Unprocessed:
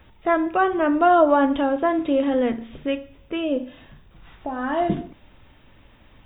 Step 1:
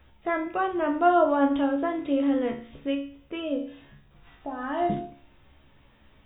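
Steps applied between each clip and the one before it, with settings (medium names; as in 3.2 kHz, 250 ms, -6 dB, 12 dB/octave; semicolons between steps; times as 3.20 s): feedback comb 70 Hz, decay 0.43 s, harmonics all, mix 80%; trim +2 dB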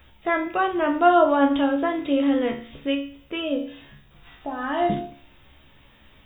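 treble shelf 2.6 kHz +10 dB; trim +3 dB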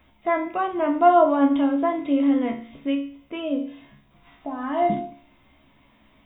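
small resonant body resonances 250/670/1000/2100 Hz, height 11 dB, ringing for 20 ms; trim -8.5 dB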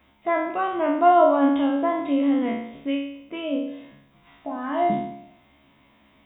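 spectral sustain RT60 0.76 s; high-pass 83 Hz 6 dB/octave; trim -1.5 dB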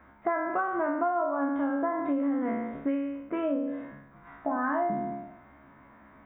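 resonant high shelf 2.2 kHz -12 dB, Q 3; compression 12:1, threshold -28 dBFS, peak gain reduction 18.5 dB; trim +3 dB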